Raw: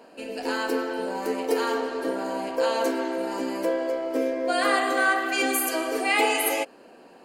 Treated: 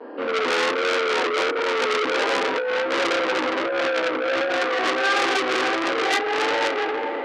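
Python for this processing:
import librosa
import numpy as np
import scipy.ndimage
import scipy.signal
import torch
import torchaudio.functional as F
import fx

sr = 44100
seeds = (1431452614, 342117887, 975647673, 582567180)

y = fx.tilt_shelf(x, sr, db=8.5, hz=1100.0)
y = fx.rev_schroeder(y, sr, rt60_s=0.39, comb_ms=28, drr_db=1.0)
y = fx.vibrato(y, sr, rate_hz=1.4, depth_cents=68.0)
y = fx.echo_diffused(y, sr, ms=532, feedback_pct=45, wet_db=-12.0)
y = fx.over_compress(y, sr, threshold_db=-22.0, ratio=-1.0)
y = fx.cabinet(y, sr, low_hz=310.0, low_slope=24, high_hz=3400.0, hz=(660.0, 1700.0, 2600.0), db=(-9, 3, -7))
y = fx.transformer_sat(y, sr, knee_hz=4000.0)
y = y * librosa.db_to_amplitude(7.5)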